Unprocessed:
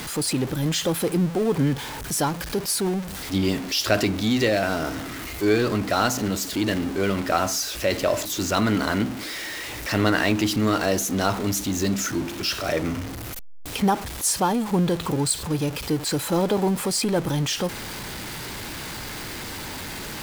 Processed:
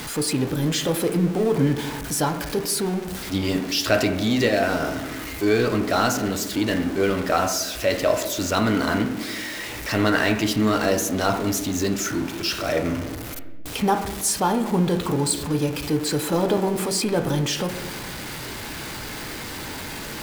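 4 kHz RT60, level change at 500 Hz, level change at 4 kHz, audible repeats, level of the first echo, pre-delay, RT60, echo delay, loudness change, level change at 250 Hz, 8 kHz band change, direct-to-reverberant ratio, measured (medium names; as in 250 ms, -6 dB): 0.75 s, +2.0 dB, 0.0 dB, no echo, no echo, 5 ms, 1.1 s, no echo, +1.0 dB, +1.0 dB, 0.0 dB, 5.0 dB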